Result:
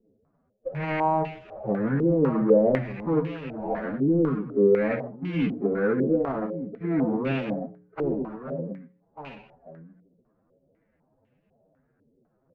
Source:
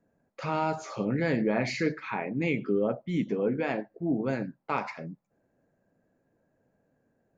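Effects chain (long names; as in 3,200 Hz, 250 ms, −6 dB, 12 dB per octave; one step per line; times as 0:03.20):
running median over 41 samples
low-shelf EQ 100 Hz +4.5 dB
mains-hum notches 60/120/180/240/300/360/420/480/540/600 Hz
on a send: single-tap delay 703 ms −11.5 dB
on the sum: phase-vocoder stretch with locked phases 1.7×
low-pass on a step sequencer 4 Hz 410–2,700 Hz
level +3 dB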